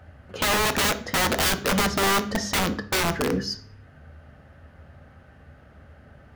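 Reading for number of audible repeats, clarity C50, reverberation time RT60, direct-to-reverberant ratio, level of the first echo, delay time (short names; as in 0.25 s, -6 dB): none, 14.5 dB, 0.45 s, 9.0 dB, none, none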